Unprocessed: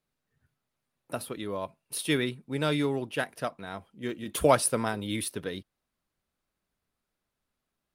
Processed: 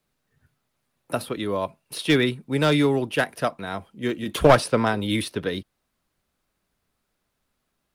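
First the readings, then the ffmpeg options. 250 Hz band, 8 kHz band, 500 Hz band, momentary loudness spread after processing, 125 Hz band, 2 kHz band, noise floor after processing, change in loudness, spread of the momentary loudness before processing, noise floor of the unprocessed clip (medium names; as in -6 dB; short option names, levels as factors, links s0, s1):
+8.0 dB, -3.5 dB, +7.0 dB, 13 LU, +8.5 dB, +8.0 dB, -77 dBFS, +6.5 dB, 14 LU, -85 dBFS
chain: -filter_complex "[0:a]acrossover=split=330|630|5400[s0][s1][s2][s3];[s3]acompressor=threshold=0.00398:ratio=6[s4];[s0][s1][s2][s4]amix=inputs=4:normalize=0,aeval=exprs='clip(val(0),-1,0.0841)':c=same,volume=2.51"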